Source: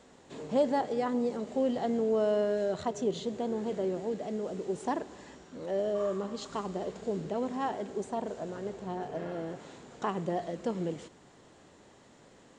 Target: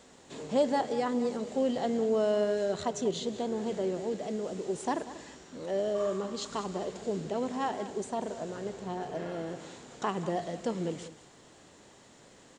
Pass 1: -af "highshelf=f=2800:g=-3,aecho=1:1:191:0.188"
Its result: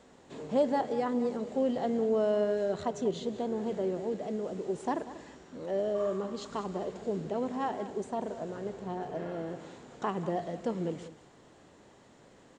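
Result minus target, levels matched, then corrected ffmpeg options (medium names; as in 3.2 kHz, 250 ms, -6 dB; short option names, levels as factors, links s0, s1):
4 kHz band -6.0 dB
-af "highshelf=f=2800:g=7,aecho=1:1:191:0.188"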